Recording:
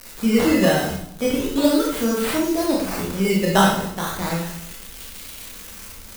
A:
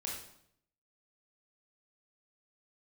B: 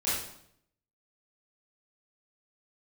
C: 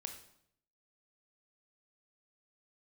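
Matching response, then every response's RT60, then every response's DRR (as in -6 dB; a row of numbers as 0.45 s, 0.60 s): A; 0.70 s, 0.70 s, 0.70 s; -3.0 dB, -11.5 dB, 5.0 dB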